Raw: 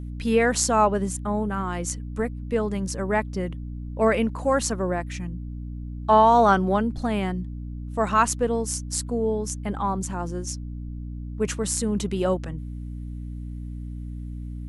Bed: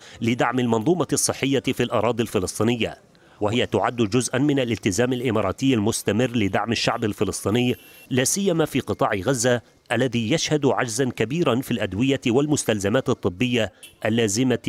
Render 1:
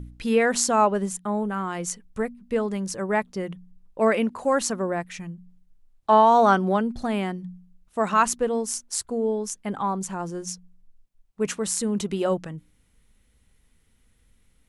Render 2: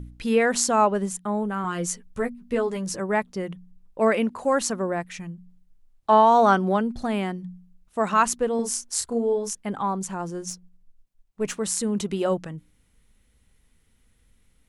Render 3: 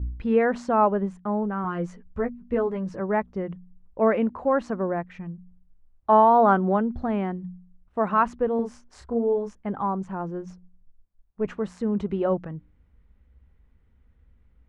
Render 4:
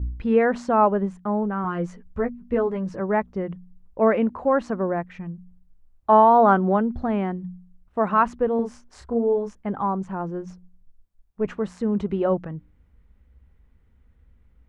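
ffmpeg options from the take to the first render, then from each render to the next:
-af "bandreject=f=60:t=h:w=4,bandreject=f=120:t=h:w=4,bandreject=f=180:t=h:w=4,bandreject=f=240:t=h:w=4,bandreject=f=300:t=h:w=4"
-filter_complex "[0:a]asettb=1/sr,asplit=3[a][b][c];[a]atrim=end=1.634[d];[b]atrim=start=1.63:end=3,asetpts=PTS-STARTPTS,afade=t=in:d=0.004:c=qsin,afade=t=out:st=1.366:d=0.004:c=qsin,asplit=2[e][f];[f]adelay=12,volume=-3.5dB[g];[e][g]amix=inputs=2:normalize=0,atrim=end_sample=60417[h];[c]atrim=start=2.996[i];[d][h]acrossfade=d=0.004:c1=hsin:c2=qsin[j];[j][i]acrossfade=d=0.004:c1=qsin:c2=hsin,asettb=1/sr,asplit=3[k][l][m];[k]atrim=end=8.564[n];[l]atrim=start=8.56:end=9.55,asetpts=PTS-STARTPTS,afade=t=in:d=0.004:c=qsin,afade=t=out:st=0.986:d=0.004:c=qsin,asplit=2[o][p];[p]adelay=30,volume=-3.5dB[q];[o][q]amix=inputs=2:normalize=0,atrim=end_sample=43659[r];[m]atrim=start=9.546[s];[n][r]acrossfade=d=0.004:c1=hsin:c2=qsin[t];[t][s]acrossfade=d=0.004:c1=qsin:c2=hsin,asettb=1/sr,asplit=3[u][v][w];[u]atrim=end=10.504[x];[v]atrim=start=10.5:end=11.58,asetpts=PTS-STARTPTS,afade=t=in:d=0.004:c=qsin,afade=t=out:st=1.076:d=0.004:c=qsin,aeval=exprs='if(lt(val(0),0),0.708*val(0),val(0))':c=same[y];[w]atrim=start=11.576[z];[x][y]acrossfade=d=0.004:c1=hsin:c2=qsin[aa];[aa][z]acrossfade=d=0.004:c1=qsin:c2=hsin"
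-af "lowpass=1.5k,equalizer=f=62:w=2.1:g=13"
-af "volume=2dB"

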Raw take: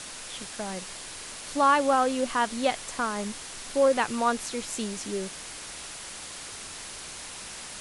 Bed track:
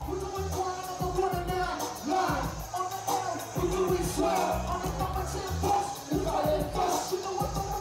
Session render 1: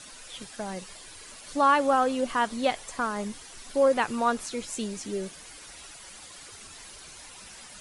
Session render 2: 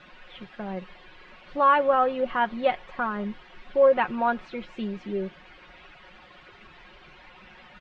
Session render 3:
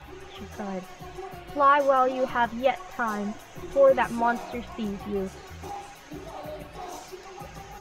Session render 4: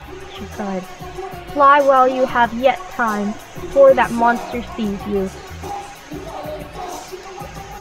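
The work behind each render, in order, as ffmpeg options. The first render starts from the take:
-af "afftdn=nr=10:nf=-41"
-af "lowpass=f=2.9k:w=0.5412,lowpass=f=2.9k:w=1.3066,aecho=1:1:5.5:0.55"
-filter_complex "[1:a]volume=-11dB[a];[0:a][a]amix=inputs=2:normalize=0"
-af "volume=9.5dB,alimiter=limit=-2dB:level=0:latency=1"

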